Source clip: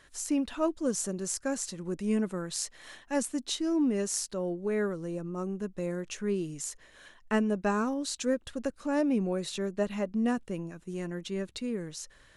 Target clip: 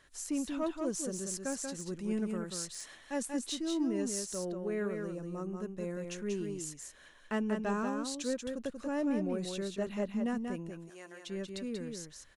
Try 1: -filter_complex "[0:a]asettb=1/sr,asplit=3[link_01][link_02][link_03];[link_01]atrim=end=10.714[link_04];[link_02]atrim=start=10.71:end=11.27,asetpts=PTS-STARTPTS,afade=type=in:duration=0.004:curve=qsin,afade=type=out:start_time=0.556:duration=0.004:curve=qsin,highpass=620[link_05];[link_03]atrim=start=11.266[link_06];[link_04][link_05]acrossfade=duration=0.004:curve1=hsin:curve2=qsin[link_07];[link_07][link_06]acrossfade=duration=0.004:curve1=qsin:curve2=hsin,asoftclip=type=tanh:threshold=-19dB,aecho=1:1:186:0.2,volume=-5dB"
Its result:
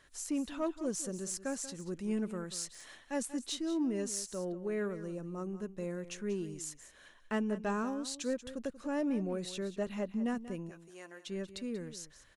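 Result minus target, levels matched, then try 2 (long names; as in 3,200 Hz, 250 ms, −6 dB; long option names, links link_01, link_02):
echo-to-direct −9 dB
-filter_complex "[0:a]asettb=1/sr,asplit=3[link_01][link_02][link_03];[link_01]atrim=end=10.714[link_04];[link_02]atrim=start=10.71:end=11.27,asetpts=PTS-STARTPTS,afade=type=in:duration=0.004:curve=qsin,afade=type=out:start_time=0.556:duration=0.004:curve=qsin,highpass=620[link_05];[link_03]atrim=start=11.266[link_06];[link_04][link_05]acrossfade=duration=0.004:curve1=hsin:curve2=qsin[link_07];[link_07][link_06]acrossfade=duration=0.004:curve1=qsin:curve2=hsin,asoftclip=type=tanh:threshold=-19dB,aecho=1:1:186:0.562,volume=-5dB"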